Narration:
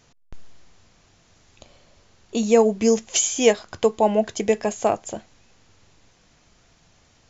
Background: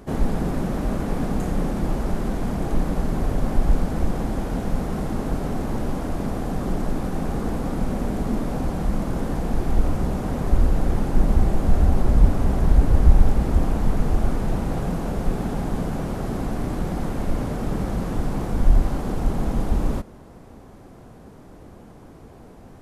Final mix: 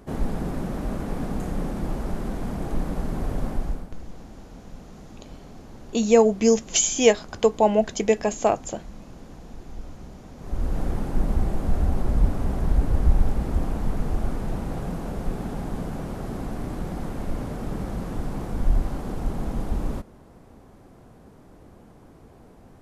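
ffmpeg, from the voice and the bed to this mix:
-filter_complex "[0:a]adelay=3600,volume=0dB[a];[1:a]volume=8.5dB,afade=t=out:st=3.44:d=0.45:silence=0.211349,afade=t=in:st=10.37:d=0.43:silence=0.223872[b];[a][b]amix=inputs=2:normalize=0"

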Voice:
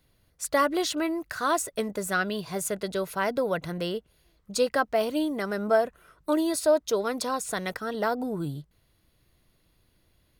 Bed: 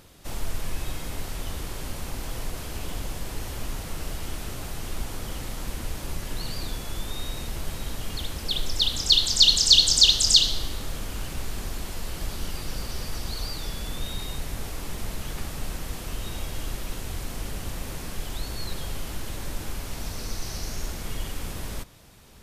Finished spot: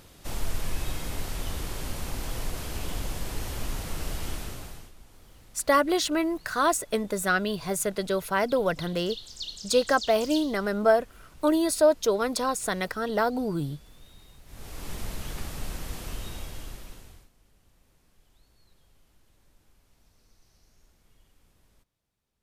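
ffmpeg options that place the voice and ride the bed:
-filter_complex "[0:a]adelay=5150,volume=2dB[a];[1:a]volume=18dB,afade=t=out:st=4.29:d=0.63:silence=0.0944061,afade=t=in:st=14.45:d=0.47:silence=0.125893,afade=t=out:st=16.06:d=1.24:silence=0.0398107[b];[a][b]amix=inputs=2:normalize=0"

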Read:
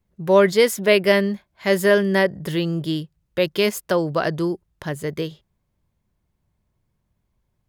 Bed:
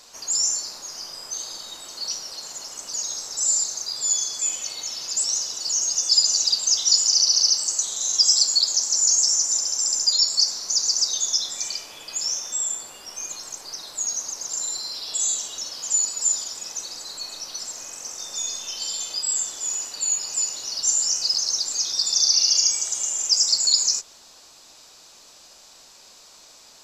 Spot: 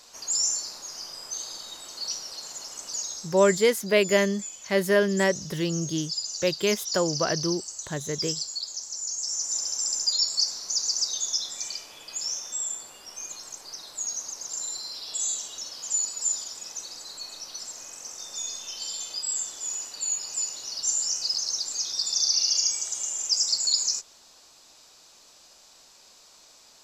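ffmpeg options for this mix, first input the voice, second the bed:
-filter_complex "[0:a]adelay=3050,volume=-5dB[a];[1:a]volume=5.5dB,afade=t=out:st=2.94:d=0.5:silence=0.298538,afade=t=in:st=9.17:d=0.47:silence=0.375837[b];[a][b]amix=inputs=2:normalize=0"

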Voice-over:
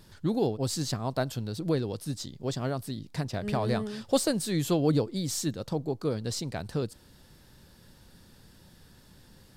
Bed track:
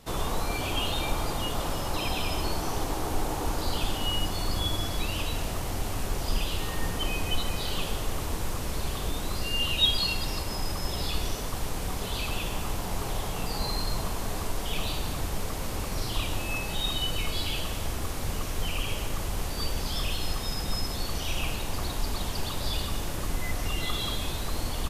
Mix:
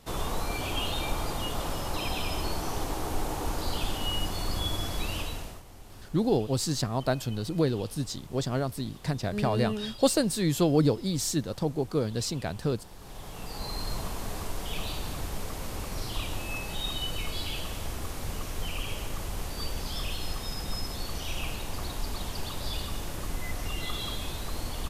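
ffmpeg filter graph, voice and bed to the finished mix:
-filter_complex "[0:a]adelay=5900,volume=2dB[a];[1:a]volume=12.5dB,afade=t=out:st=5.15:d=0.48:silence=0.158489,afade=t=in:st=12.97:d=0.94:silence=0.188365[b];[a][b]amix=inputs=2:normalize=0"

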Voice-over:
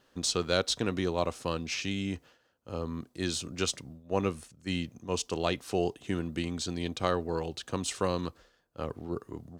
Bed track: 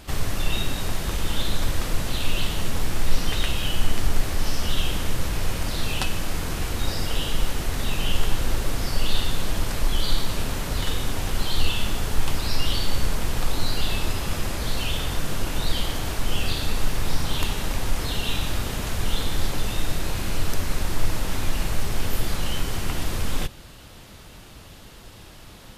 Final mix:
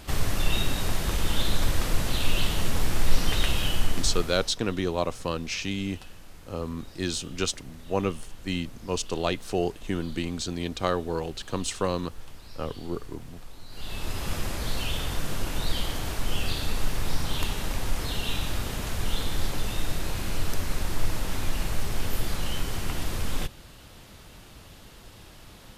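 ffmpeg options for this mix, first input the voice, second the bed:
-filter_complex "[0:a]adelay=3800,volume=2.5dB[a];[1:a]volume=17dB,afade=t=out:st=3.59:d=0.96:silence=0.0944061,afade=t=in:st=13.69:d=0.6:silence=0.133352[b];[a][b]amix=inputs=2:normalize=0"

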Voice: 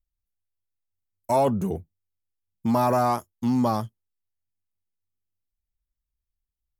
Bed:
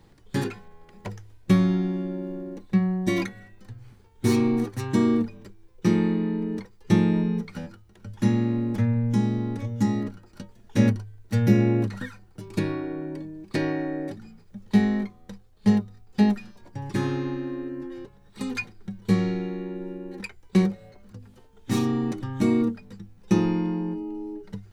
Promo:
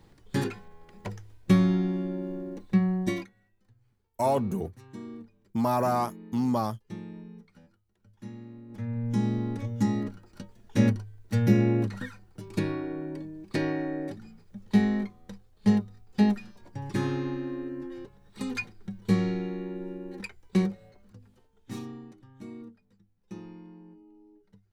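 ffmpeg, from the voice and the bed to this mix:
-filter_complex "[0:a]adelay=2900,volume=-4dB[a];[1:a]volume=16.5dB,afade=t=out:st=3.02:d=0.24:silence=0.112202,afade=t=in:st=8.68:d=0.61:silence=0.125893,afade=t=out:st=20.14:d=1.97:silence=0.112202[b];[a][b]amix=inputs=2:normalize=0"

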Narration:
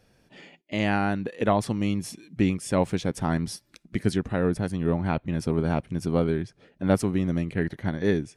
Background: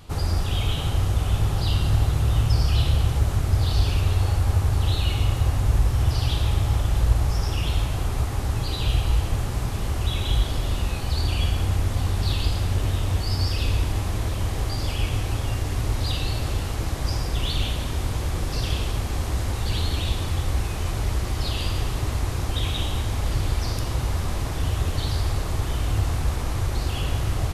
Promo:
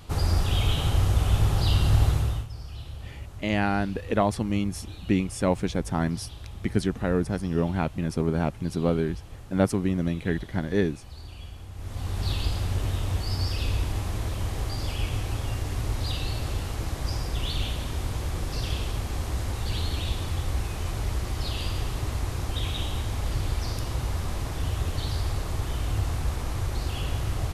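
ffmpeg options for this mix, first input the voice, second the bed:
-filter_complex "[0:a]adelay=2700,volume=-0.5dB[a];[1:a]volume=14.5dB,afade=t=out:st=2.08:d=0.39:silence=0.11885,afade=t=in:st=11.74:d=0.54:silence=0.188365[b];[a][b]amix=inputs=2:normalize=0"

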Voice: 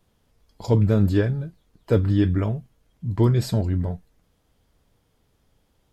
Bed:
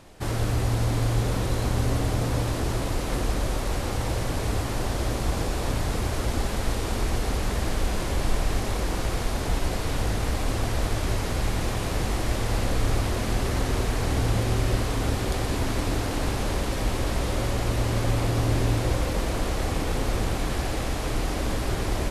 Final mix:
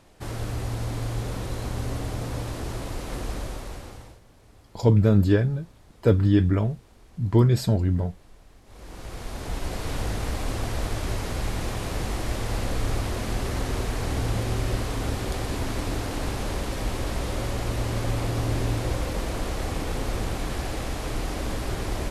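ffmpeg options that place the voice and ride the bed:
-filter_complex "[0:a]adelay=4150,volume=0.5dB[a];[1:a]volume=19.5dB,afade=t=out:st=3.36:d=0.84:silence=0.0794328,afade=t=in:st=8.65:d=1.26:silence=0.0562341[b];[a][b]amix=inputs=2:normalize=0"

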